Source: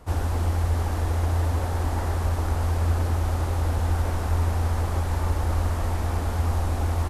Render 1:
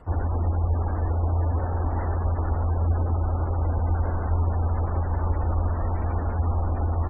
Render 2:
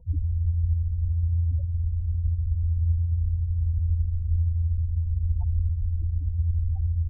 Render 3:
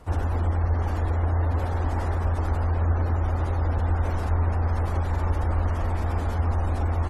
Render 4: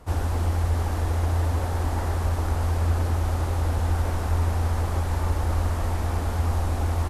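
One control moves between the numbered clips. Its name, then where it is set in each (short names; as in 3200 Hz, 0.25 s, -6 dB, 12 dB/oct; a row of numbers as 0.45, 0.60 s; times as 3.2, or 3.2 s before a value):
spectral gate, under each frame's peak: -30, -10, -40, -55 dB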